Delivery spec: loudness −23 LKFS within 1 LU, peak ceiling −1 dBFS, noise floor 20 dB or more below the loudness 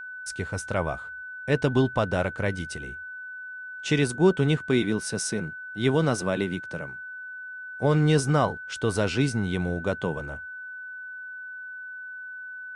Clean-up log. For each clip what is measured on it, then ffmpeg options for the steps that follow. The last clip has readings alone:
interfering tone 1,500 Hz; level of the tone −36 dBFS; integrated loudness −26.5 LKFS; sample peak −9.0 dBFS; target loudness −23.0 LKFS
→ -af "bandreject=frequency=1500:width=30"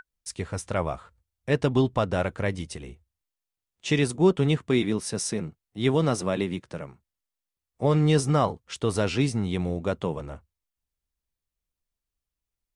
interfering tone none found; integrated loudness −26.0 LKFS; sample peak −9.5 dBFS; target loudness −23.0 LKFS
→ -af "volume=3dB"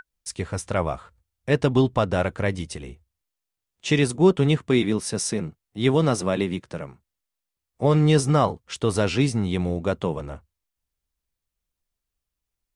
integrated loudness −23.0 LKFS; sample peak −6.5 dBFS; background noise floor −85 dBFS

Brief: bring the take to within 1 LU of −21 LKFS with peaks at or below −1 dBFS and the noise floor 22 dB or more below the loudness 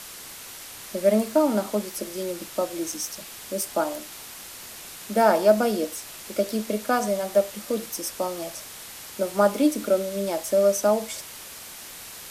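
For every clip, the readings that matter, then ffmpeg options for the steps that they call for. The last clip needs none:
background noise floor −41 dBFS; target noise floor −47 dBFS; integrated loudness −25.0 LKFS; sample peak −5.5 dBFS; target loudness −21.0 LKFS
→ -af "afftdn=noise_reduction=6:noise_floor=-41"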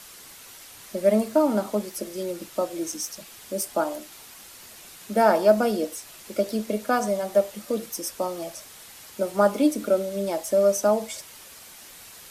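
background noise floor −46 dBFS; target noise floor −47 dBFS
→ -af "afftdn=noise_reduction=6:noise_floor=-46"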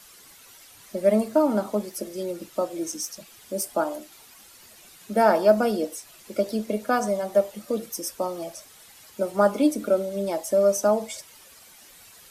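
background noise floor −51 dBFS; integrated loudness −25.0 LKFS; sample peak −5.5 dBFS; target loudness −21.0 LKFS
→ -af "volume=4dB"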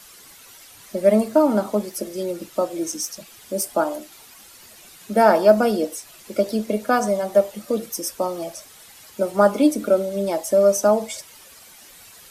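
integrated loudness −21.0 LKFS; sample peak −1.5 dBFS; background noise floor −47 dBFS

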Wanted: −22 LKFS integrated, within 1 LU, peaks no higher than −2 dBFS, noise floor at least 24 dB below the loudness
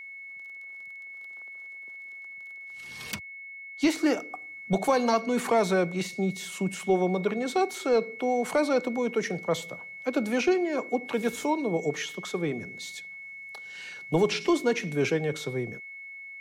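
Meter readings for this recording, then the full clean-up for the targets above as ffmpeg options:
interfering tone 2,200 Hz; level of the tone −40 dBFS; integrated loudness −28.0 LKFS; sample peak −14.0 dBFS; target loudness −22.0 LKFS
→ -af "bandreject=frequency=2200:width=30"
-af "volume=6dB"

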